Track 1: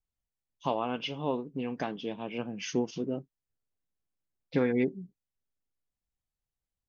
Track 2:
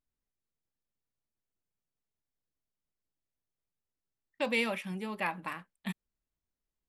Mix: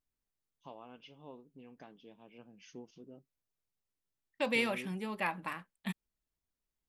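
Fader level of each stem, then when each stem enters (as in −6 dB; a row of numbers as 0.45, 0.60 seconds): −20.0, −1.0 decibels; 0.00, 0.00 seconds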